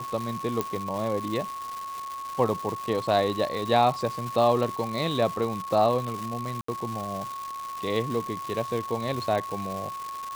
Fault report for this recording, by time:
crackle 440 per s -31 dBFS
whine 1.1 kHz -33 dBFS
0.61 s: pop -12 dBFS
6.61–6.68 s: dropout 74 ms

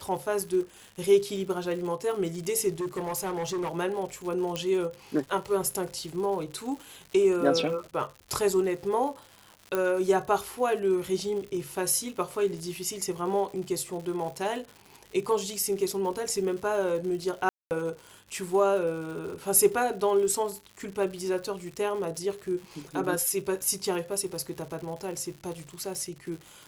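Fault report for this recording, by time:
crackle 180 per s -37 dBFS
2.79–3.77 s: clipped -27.5 dBFS
4.56 s: pop -16 dBFS
9.75 s: pop -15 dBFS
17.49–17.71 s: dropout 219 ms

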